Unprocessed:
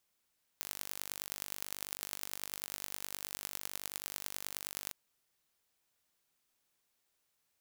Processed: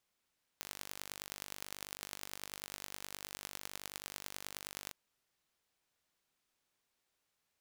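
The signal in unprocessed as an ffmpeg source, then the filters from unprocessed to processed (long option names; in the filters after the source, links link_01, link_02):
-f lavfi -i "aevalsrc='0.316*eq(mod(n,895),0)*(0.5+0.5*eq(mod(n,4475),0))':duration=4.31:sample_rate=44100"
-af "highshelf=frequency=7900:gain=-8.5"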